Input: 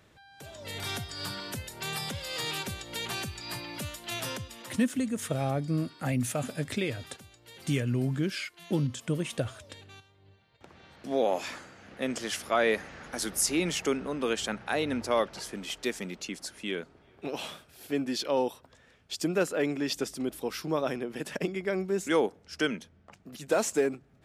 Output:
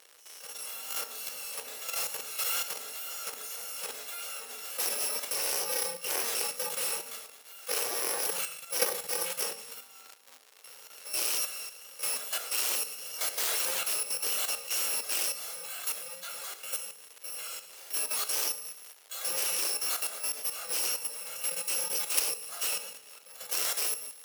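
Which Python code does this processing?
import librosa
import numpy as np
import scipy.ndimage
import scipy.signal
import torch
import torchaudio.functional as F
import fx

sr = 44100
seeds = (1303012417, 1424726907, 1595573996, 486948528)

p1 = fx.bit_reversed(x, sr, seeds[0], block=128)
p2 = fx.room_shoebox(p1, sr, seeds[1], volume_m3=750.0, walls='furnished', distance_m=5.6)
p3 = fx.wow_flutter(p2, sr, seeds[2], rate_hz=2.1, depth_cents=25.0)
p4 = p3 + fx.echo_wet_highpass(p3, sr, ms=112, feedback_pct=51, hz=1600.0, wet_db=-14, dry=0)
p5 = fx.dmg_crackle(p4, sr, seeds[3], per_s=200.0, level_db=-34.0)
p6 = fx.cheby_harmonics(p5, sr, harmonics=(7,), levels_db=(-9,), full_scale_db=-6.0)
p7 = fx.level_steps(p6, sr, step_db=9)
p8 = scipy.signal.sosfilt(scipy.signal.cheby1(3, 1.0, 420.0, 'highpass', fs=sr, output='sos'), p7)
y = p8 * 10.0 ** (-2.5 / 20.0)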